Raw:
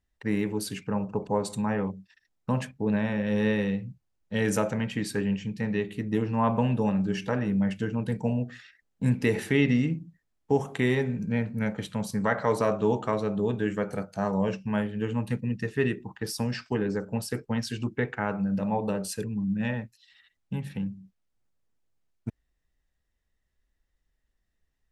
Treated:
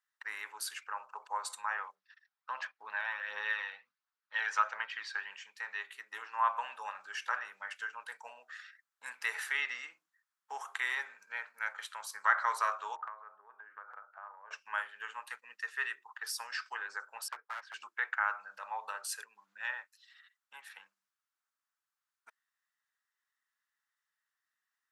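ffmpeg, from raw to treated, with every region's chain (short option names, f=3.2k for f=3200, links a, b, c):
-filter_complex "[0:a]asettb=1/sr,asplit=3[a][b][c];[a]atrim=end=1.954[d];[b]atrim=start=1.95:end=5.3,asetpts=PTS-STARTPTS,afade=t=in:d=0.004:c=qsin,afade=t=out:st=3.346:d=0.004:c=qsin,lowpass=f=5k:w=0.5412,lowpass=f=5k:w=1.3066,aphaser=in_gain=1:out_gain=1:delay=1.4:decay=0.38:speed=1.4:type=triangular[e];[c]atrim=start=5.296[f];[d][e]acrossfade=d=0.004:c1=hsin:c2=qsin[g];[g][f]acrossfade=d=0.004:c1=qsin:c2=hsin,asettb=1/sr,asplit=3[h][i][j];[h]atrim=end=12.964[k];[i]atrim=start=12.96:end=14.51,asetpts=PTS-STARTPTS,afade=t=in:d=0.004:c=qsin,afade=t=out:st=1.546:d=0.004:c=qsin,lowpass=f=1.5k:w=0.5412,lowpass=f=1.5k:w=1.3066,acompressor=threshold=-34dB:ratio=12:attack=3.2:release=140:knee=1:detection=peak[l];[j]atrim=start=14.506[m];[k][l]acrossfade=d=0.004:c1=hsin:c2=qsin[n];[n][m]acrossfade=d=0.004:c1=qsin:c2=hsin,asettb=1/sr,asplit=3[o][p][q];[o]atrim=end=17.284[r];[p]atrim=start=17.28:end=17.74,asetpts=PTS-STARTPTS,afade=t=in:d=0.004:c=qsin,afade=t=out:st=0.456:d=0.004:c=qsin,lowpass=1.5k,aeval=exprs='0.0422*(abs(mod(val(0)/0.0422+3,4)-2)-1)':c=same[s];[q]atrim=start=17.736[t];[r][s]acrossfade=d=0.004:c1=hsin:c2=qsin[u];[u][t]acrossfade=d=0.004:c1=qsin:c2=hsin,highpass=f=1.2k:w=0.5412,highpass=f=1.2k:w=1.3066,highshelf=f=1.8k:t=q:w=1.5:g=-7,volume=4.5dB"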